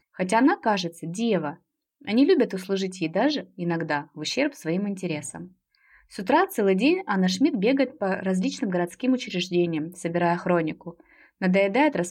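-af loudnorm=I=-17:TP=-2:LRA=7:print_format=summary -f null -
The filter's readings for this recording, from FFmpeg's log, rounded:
Input Integrated:    -24.5 LUFS
Input True Peak:      -9.2 dBTP
Input LRA:             1.4 LU
Input Threshold:     -35.0 LUFS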